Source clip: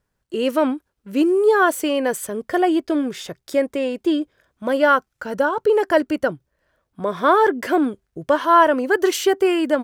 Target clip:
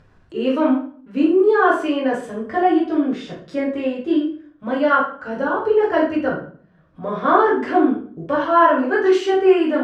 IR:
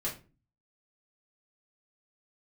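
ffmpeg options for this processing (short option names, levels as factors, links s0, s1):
-filter_complex "[0:a]lowpass=3600[s0];[1:a]atrim=start_sample=2205,asetrate=26901,aresample=44100[s1];[s0][s1]afir=irnorm=-1:irlink=0,acompressor=mode=upward:threshold=0.0355:ratio=2.5,volume=0.447"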